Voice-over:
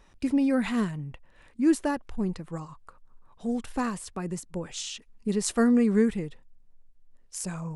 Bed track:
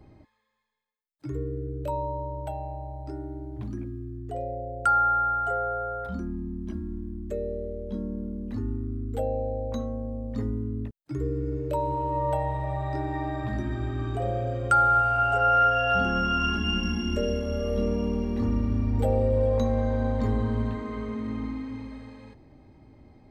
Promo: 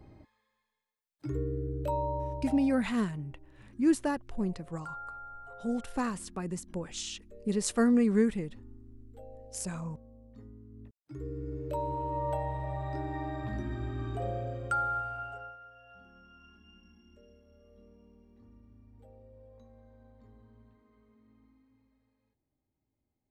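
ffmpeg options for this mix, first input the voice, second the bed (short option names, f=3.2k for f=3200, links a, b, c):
-filter_complex "[0:a]adelay=2200,volume=-3dB[a];[1:a]volume=13.5dB,afade=t=out:st=2.23:d=0.69:silence=0.105925,afade=t=in:st=10.68:d=1.13:silence=0.177828,afade=t=out:st=14.24:d=1.33:silence=0.0501187[b];[a][b]amix=inputs=2:normalize=0"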